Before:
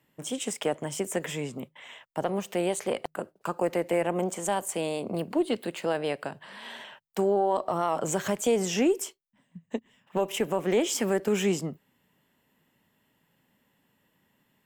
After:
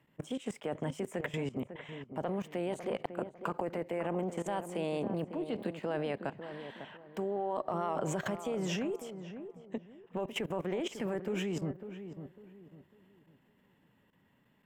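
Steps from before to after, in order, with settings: tone controls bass +3 dB, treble -11 dB; level held to a coarse grid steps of 18 dB; on a send: filtered feedback delay 550 ms, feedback 33%, low-pass 1.3 kHz, level -9.5 dB; on the sum: trim +2 dB

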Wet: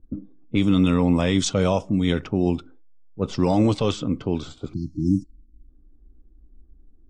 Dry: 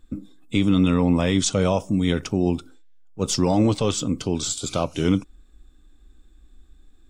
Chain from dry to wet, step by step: level-controlled noise filter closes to 410 Hz, open at -14 dBFS; spectral selection erased 4.73–5.68 s, 360–4100 Hz

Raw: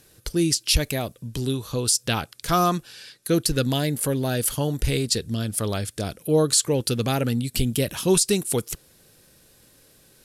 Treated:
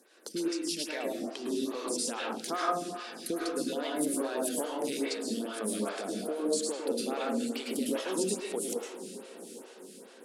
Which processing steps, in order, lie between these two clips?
elliptic high-pass 210 Hz, stop band 50 dB; peaking EQ 13 kHz -13.5 dB 0.3 oct; compression, threshold -30 dBFS, peak gain reduction 14 dB; 7.11–7.71 s: crackle 500 per s -58 dBFS; on a send: echo that smears into a reverb 803 ms, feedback 49%, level -13 dB; on the sum: plate-style reverb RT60 0.83 s, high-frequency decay 0.5×, pre-delay 95 ms, DRR -3.5 dB; lamp-driven phase shifter 2.4 Hz; trim -1 dB

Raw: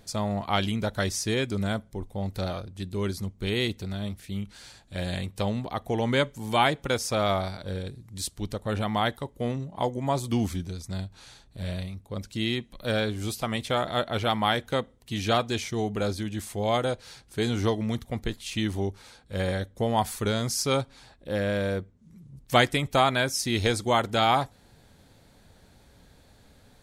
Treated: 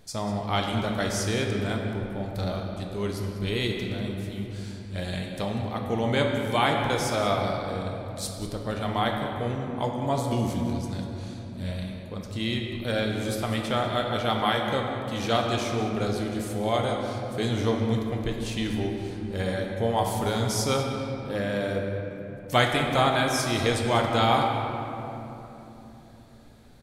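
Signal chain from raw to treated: on a send: delay 193 ms -15 dB; on the sum: simulated room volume 180 m³, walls hard, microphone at 0.42 m; trim -2 dB

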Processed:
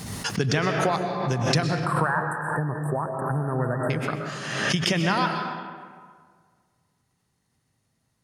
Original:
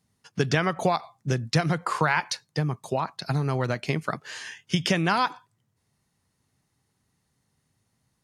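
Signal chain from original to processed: 1.62–3.90 s: brick-wall FIR band-stop 1.9–7.6 kHz; reverberation RT60 1.8 s, pre-delay 85 ms, DRR 3 dB; swell ahead of each attack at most 41 dB/s; trim -1.5 dB

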